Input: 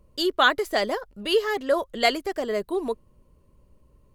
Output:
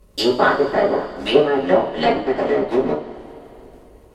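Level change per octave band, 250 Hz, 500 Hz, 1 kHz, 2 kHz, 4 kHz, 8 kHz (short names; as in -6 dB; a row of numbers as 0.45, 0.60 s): +9.0 dB, +8.0 dB, +5.5 dB, +1.5 dB, +0.5 dB, n/a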